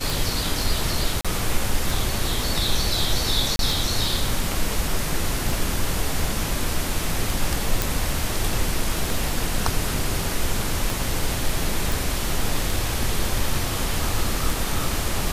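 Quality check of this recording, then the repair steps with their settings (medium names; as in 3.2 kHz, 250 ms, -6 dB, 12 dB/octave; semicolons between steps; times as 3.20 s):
tick 33 1/3 rpm
1.21–1.25 s: dropout 36 ms
3.56–3.59 s: dropout 32 ms
7.82 s: pop
11.92 s: pop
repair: de-click; interpolate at 1.21 s, 36 ms; interpolate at 3.56 s, 32 ms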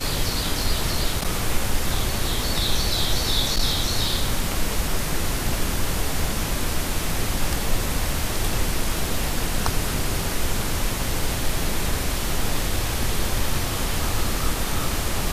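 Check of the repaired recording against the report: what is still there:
nothing left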